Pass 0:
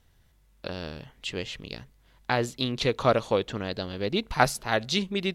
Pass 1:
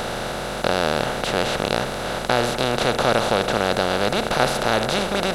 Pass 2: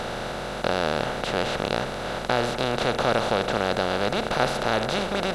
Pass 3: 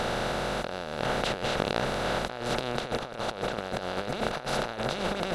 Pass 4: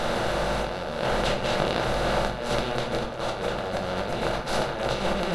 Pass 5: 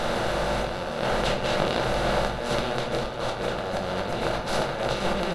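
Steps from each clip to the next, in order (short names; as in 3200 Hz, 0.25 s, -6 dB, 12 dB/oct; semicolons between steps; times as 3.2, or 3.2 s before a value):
per-bin compression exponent 0.2; gain -3 dB
high shelf 9200 Hz -11.5 dB; gain -3.5 dB
negative-ratio compressor -28 dBFS, ratio -0.5; gain -2 dB
shoebox room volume 100 m³, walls mixed, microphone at 0.78 m
echo 0.473 s -11 dB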